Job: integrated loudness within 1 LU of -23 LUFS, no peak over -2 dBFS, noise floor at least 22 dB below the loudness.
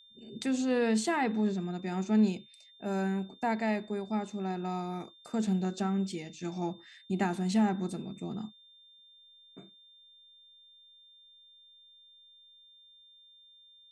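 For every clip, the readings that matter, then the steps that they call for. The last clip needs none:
steady tone 3.6 kHz; tone level -56 dBFS; loudness -32.0 LUFS; peak level -17.0 dBFS; loudness target -23.0 LUFS
-> band-stop 3.6 kHz, Q 30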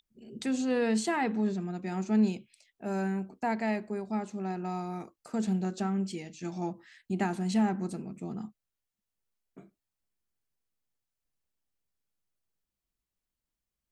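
steady tone not found; loudness -32.0 LUFS; peak level -17.0 dBFS; loudness target -23.0 LUFS
-> trim +9 dB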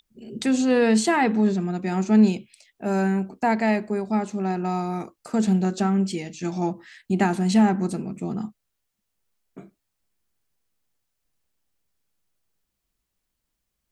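loudness -23.0 LUFS; peak level -8.0 dBFS; noise floor -80 dBFS

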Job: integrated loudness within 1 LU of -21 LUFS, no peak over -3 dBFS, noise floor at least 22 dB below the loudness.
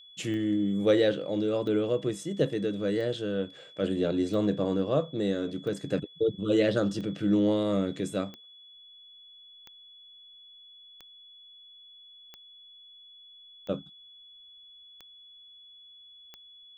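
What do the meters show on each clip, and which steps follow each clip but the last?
clicks found 13; steady tone 3.4 kHz; tone level -50 dBFS; loudness -28.5 LUFS; peak level -12.5 dBFS; loudness target -21.0 LUFS
-> de-click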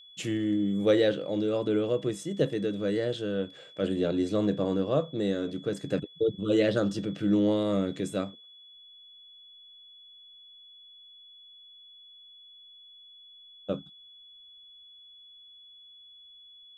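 clicks found 0; steady tone 3.4 kHz; tone level -50 dBFS
-> band-stop 3.4 kHz, Q 30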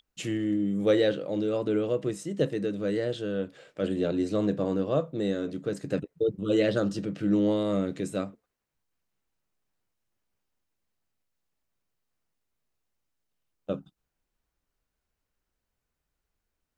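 steady tone not found; loudness -28.5 LUFS; peak level -13.0 dBFS; loudness target -21.0 LUFS
-> trim +7.5 dB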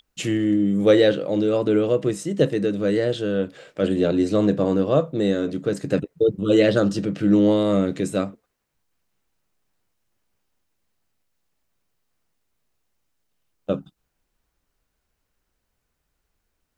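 loudness -21.0 LUFS; peak level -5.5 dBFS; noise floor -77 dBFS

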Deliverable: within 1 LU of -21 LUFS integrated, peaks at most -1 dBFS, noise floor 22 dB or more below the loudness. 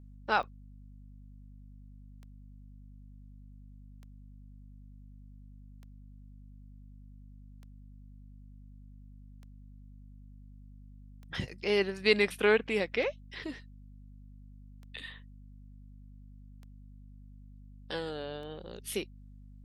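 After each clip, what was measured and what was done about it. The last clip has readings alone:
clicks found 11; hum 50 Hz; highest harmonic 250 Hz; hum level -49 dBFS; loudness -32.0 LUFS; peak level -11.0 dBFS; loudness target -21.0 LUFS
-> de-click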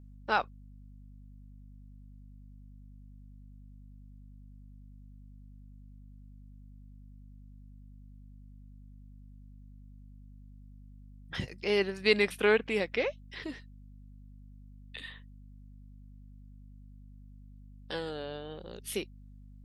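clicks found 0; hum 50 Hz; highest harmonic 250 Hz; hum level -49 dBFS
-> hum notches 50/100/150/200/250 Hz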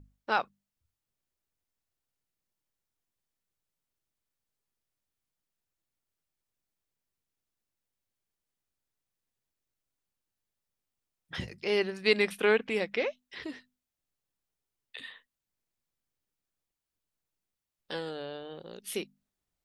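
hum not found; loudness -30.5 LUFS; peak level -11.0 dBFS; loudness target -21.0 LUFS
-> trim +9.5 dB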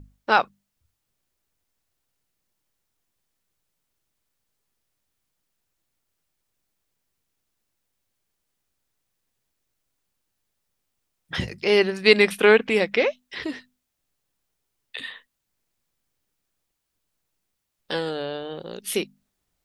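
loudness -21.5 LUFS; peak level -1.5 dBFS; noise floor -79 dBFS

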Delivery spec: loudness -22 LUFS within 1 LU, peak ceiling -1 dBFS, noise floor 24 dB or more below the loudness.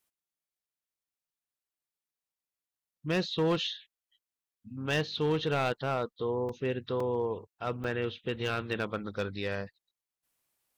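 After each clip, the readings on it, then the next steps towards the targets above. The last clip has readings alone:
clipped samples 0.8%; clipping level -23.0 dBFS; dropouts 3; longest dropout 3.7 ms; loudness -32.5 LUFS; peak level -23.0 dBFS; loudness target -22.0 LUFS
-> clip repair -23 dBFS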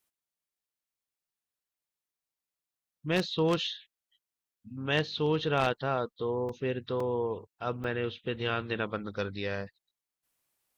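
clipped samples 0.0%; dropouts 3; longest dropout 3.7 ms
-> interpolate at 6.49/7.00/7.84 s, 3.7 ms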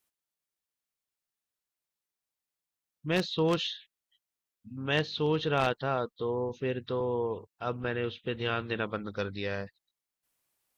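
dropouts 0; loudness -31.5 LUFS; peak level -14.0 dBFS; loudness target -22.0 LUFS
-> trim +9.5 dB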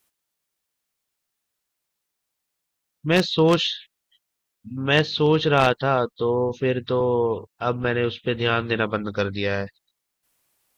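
loudness -22.0 LUFS; peak level -4.5 dBFS; noise floor -81 dBFS

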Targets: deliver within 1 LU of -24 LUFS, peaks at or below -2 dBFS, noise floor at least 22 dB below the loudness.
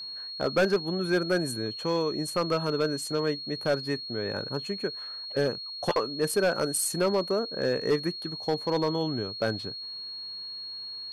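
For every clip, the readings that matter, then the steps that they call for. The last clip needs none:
clipped samples 0.8%; clipping level -18.0 dBFS; steady tone 4.3 kHz; tone level -36 dBFS; loudness -29.0 LUFS; peak level -18.0 dBFS; loudness target -24.0 LUFS
-> clip repair -18 dBFS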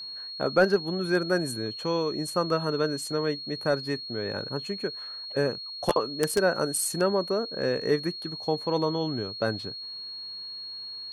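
clipped samples 0.0%; steady tone 4.3 kHz; tone level -36 dBFS
-> band-stop 4.3 kHz, Q 30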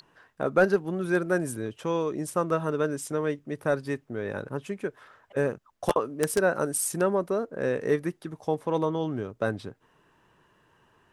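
steady tone not found; loudness -28.5 LUFS; peak level -9.0 dBFS; loudness target -24.0 LUFS
-> trim +4.5 dB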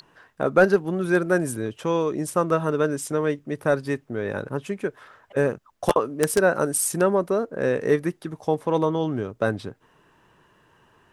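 loudness -24.0 LUFS; peak level -4.5 dBFS; noise floor -61 dBFS

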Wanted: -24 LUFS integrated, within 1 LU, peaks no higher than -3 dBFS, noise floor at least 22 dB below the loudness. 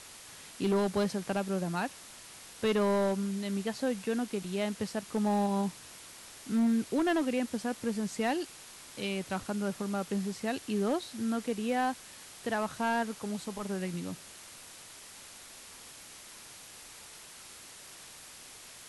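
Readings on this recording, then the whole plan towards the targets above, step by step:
clipped samples 0.9%; clipping level -23.0 dBFS; noise floor -50 dBFS; noise floor target -55 dBFS; loudness -32.5 LUFS; peak level -23.0 dBFS; loudness target -24.0 LUFS
-> clip repair -23 dBFS; noise reduction 6 dB, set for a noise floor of -50 dBFS; trim +8.5 dB

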